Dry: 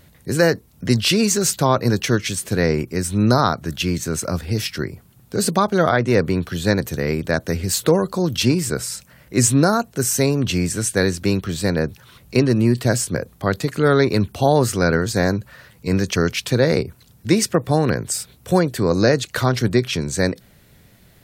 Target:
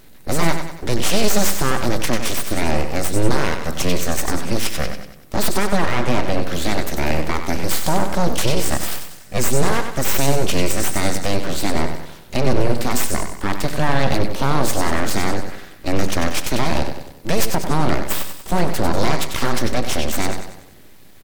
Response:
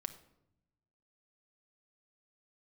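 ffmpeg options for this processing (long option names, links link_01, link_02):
-filter_complex "[0:a]alimiter=limit=-11.5dB:level=0:latency=1:release=67,aecho=1:1:95|190|285|380|475|570:0.398|0.191|0.0917|0.044|0.0211|0.0101,aeval=exprs='abs(val(0))':channel_layout=same,asplit=2[link_01][link_02];[1:a]atrim=start_sample=2205[link_03];[link_02][link_03]afir=irnorm=-1:irlink=0,volume=-1dB[link_04];[link_01][link_04]amix=inputs=2:normalize=0"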